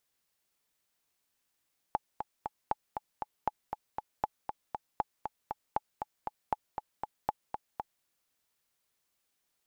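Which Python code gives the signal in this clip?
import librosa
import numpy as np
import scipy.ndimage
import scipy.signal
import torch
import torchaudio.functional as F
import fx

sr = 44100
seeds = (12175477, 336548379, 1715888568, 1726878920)

y = fx.click_track(sr, bpm=236, beats=3, bars=8, hz=851.0, accent_db=6.5, level_db=-15.0)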